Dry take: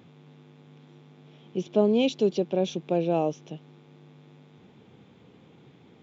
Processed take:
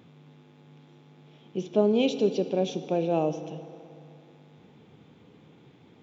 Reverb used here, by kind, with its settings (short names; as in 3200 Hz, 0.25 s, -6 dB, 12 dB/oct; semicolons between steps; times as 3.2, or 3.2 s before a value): FDN reverb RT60 2.6 s, high-frequency decay 0.7×, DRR 10 dB; gain -1 dB